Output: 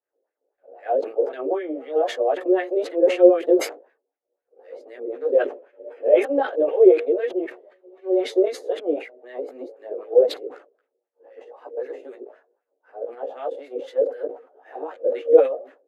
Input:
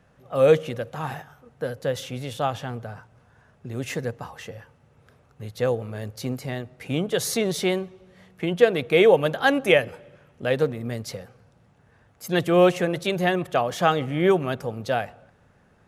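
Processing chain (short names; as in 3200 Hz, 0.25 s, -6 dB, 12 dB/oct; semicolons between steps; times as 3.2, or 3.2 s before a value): whole clip reversed; steep high-pass 280 Hz 72 dB/oct; expander -50 dBFS; resonant low shelf 770 Hz +14 dB, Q 1.5; notch 5600 Hz, Q 12; in parallel at +2 dB: compressor, threshold -14 dBFS, peak gain reduction 19 dB; on the sum: LFO band-pass sine 3.9 Hz 440–2000 Hz; chorus voices 4, 0.37 Hz, delay 15 ms, depth 4.5 ms; sustainer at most 140 dB/s; gain -7 dB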